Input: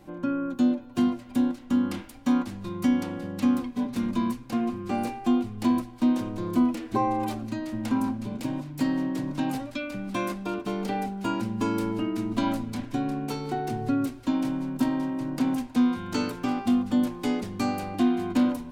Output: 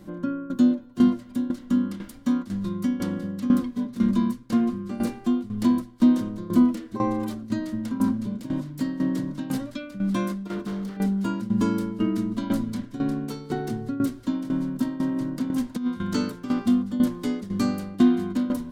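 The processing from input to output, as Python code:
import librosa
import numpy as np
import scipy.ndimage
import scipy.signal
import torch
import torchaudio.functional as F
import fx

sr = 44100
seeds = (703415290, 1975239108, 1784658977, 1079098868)

y = fx.overload_stage(x, sr, gain_db=32.5, at=(10.47, 10.97))
y = fx.tremolo_shape(y, sr, shape='saw_down', hz=2.0, depth_pct=80)
y = fx.over_compress(y, sr, threshold_db=-29.0, ratio=-0.5, at=(15.16, 16.03))
y = fx.graphic_eq_31(y, sr, hz=(200, 800, 2500), db=(9, -11, -8))
y = y * librosa.db_to_amplitude(4.0)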